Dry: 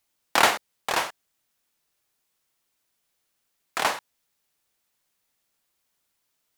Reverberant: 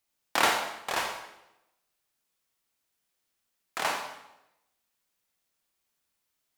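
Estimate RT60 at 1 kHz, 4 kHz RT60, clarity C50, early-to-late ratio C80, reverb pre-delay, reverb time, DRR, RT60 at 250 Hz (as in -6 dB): 0.85 s, 0.80 s, 5.0 dB, 8.0 dB, 26 ms, 0.90 s, 2.5 dB, 0.95 s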